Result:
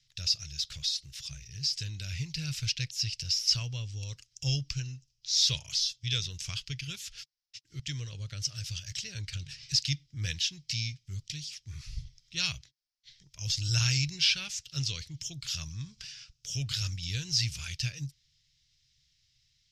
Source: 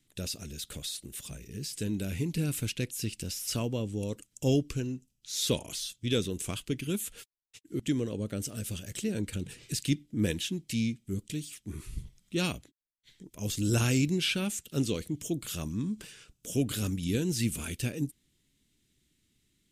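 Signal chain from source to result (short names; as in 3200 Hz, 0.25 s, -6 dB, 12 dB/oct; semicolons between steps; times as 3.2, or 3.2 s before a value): EQ curve 140 Hz 0 dB, 210 Hz -24 dB, 330 Hz -25 dB, 1900 Hz 0 dB, 3600 Hz +4 dB, 5300 Hz +14 dB, 8900 Hz -15 dB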